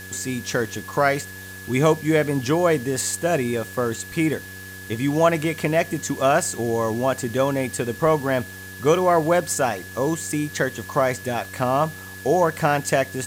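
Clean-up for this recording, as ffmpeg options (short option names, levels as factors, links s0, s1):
-af "adeclick=t=4,bandreject=f=95.1:t=h:w=4,bandreject=f=190.2:t=h:w=4,bandreject=f=285.3:t=h:w=4,bandreject=f=380.4:t=h:w=4,bandreject=f=475.5:t=h:w=4,bandreject=f=1700:w=30,afwtdn=0.0071"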